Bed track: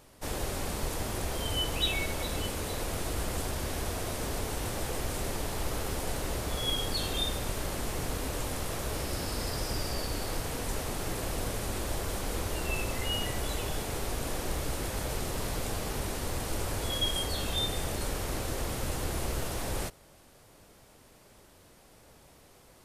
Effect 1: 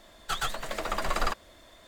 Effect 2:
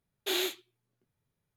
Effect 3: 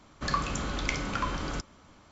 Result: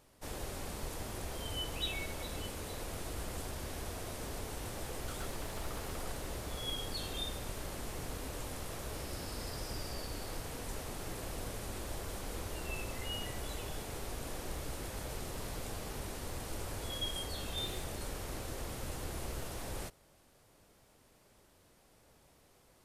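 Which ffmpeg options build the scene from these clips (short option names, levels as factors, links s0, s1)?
-filter_complex "[0:a]volume=0.398[s0];[1:a]acompressor=threshold=0.0141:ratio=6:attack=3.2:release=140:knee=1:detection=peak[s1];[2:a]acompressor=threshold=0.0251:ratio=6:attack=3.2:release=140:knee=1:detection=peak[s2];[s1]atrim=end=1.87,asetpts=PTS-STARTPTS,volume=0.376,afade=t=in:d=0.004:c=hsin,afade=t=out:st=1.866:d=0.004:c=hsin,adelay=4790[s3];[s2]atrim=end=1.56,asetpts=PTS-STARTPTS,volume=0.224,afade=t=in:d=0.004:c=hsin,afade=t=out:st=1.556:d=0.004:c=hsin,adelay=17310[s4];[s0][s3][s4]amix=inputs=3:normalize=0"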